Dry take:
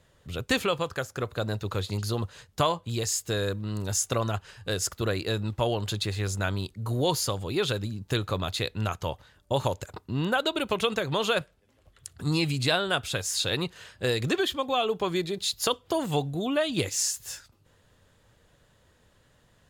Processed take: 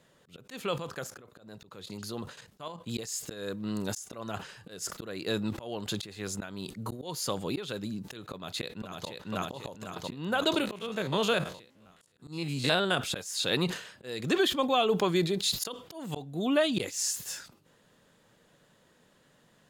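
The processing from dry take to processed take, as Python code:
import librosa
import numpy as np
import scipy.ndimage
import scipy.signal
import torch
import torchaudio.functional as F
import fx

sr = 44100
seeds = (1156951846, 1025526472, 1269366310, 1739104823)

y = fx.level_steps(x, sr, step_db=12, at=(0.76, 2.85))
y = fx.echo_throw(y, sr, start_s=8.32, length_s=0.75, ms=500, feedback_pct=55, wet_db=-2.0)
y = fx.spec_steps(y, sr, hold_ms=50, at=(10.6, 12.96), fade=0.02)
y = fx.low_shelf_res(y, sr, hz=120.0, db=-13.0, q=1.5)
y = fx.auto_swell(y, sr, attack_ms=383.0)
y = fx.sustainer(y, sr, db_per_s=110.0)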